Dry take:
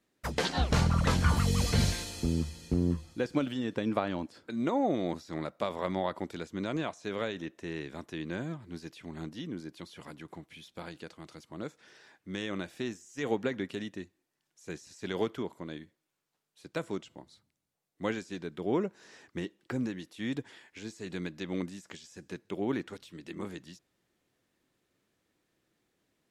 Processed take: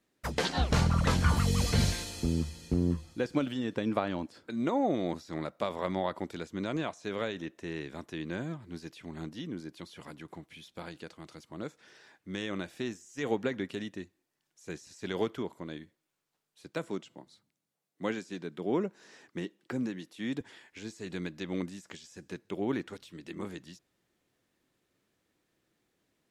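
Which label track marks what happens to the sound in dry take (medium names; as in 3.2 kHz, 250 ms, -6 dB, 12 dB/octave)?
16.700000	20.410000	Chebyshev high-pass 160 Hz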